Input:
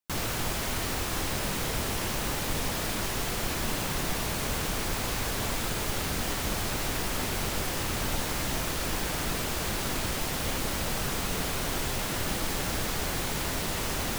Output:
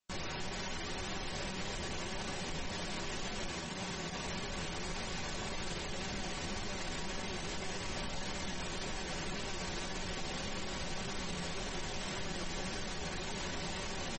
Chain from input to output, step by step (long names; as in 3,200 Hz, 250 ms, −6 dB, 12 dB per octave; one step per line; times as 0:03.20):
on a send: repeating echo 529 ms, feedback 18%, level −23 dB
on the sum: dynamic equaliser 1,300 Hz, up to −5 dB, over −58 dBFS, Q 8
flanger 1.8 Hz, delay 9.7 ms, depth 2.6 ms, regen −18%
downward compressor 8 to 1, threshold −39 dBFS, peak gain reduction 12 dB
comb filter 5.3 ms, depth 42%
brickwall limiter −36 dBFS, peak gain reduction 10 dB
0:03.50–0:04.26: high-pass filter 53 Hz 12 dB per octave
delay with a low-pass on its return 826 ms, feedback 56%, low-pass 530 Hz, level −13 dB
level +7 dB
MP3 32 kbit/s 48,000 Hz